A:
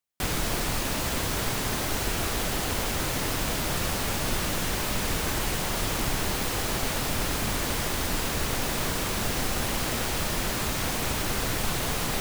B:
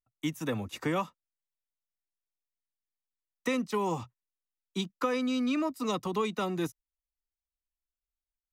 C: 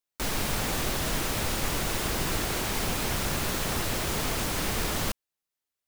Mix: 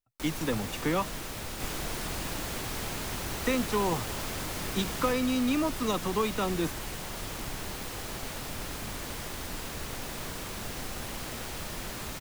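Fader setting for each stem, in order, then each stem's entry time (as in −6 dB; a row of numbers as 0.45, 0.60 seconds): −9.5, +1.5, −9.0 decibels; 1.40, 0.00, 0.00 seconds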